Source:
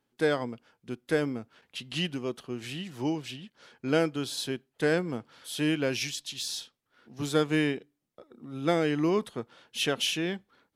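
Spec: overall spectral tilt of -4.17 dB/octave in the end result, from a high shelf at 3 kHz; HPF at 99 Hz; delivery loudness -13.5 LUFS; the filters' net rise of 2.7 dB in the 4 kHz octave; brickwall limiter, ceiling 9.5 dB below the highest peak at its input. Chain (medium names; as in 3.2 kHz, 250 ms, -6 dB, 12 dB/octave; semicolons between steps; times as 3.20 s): high-pass 99 Hz; treble shelf 3 kHz -5 dB; peaking EQ 4 kHz +7.5 dB; trim +19.5 dB; peak limiter -1 dBFS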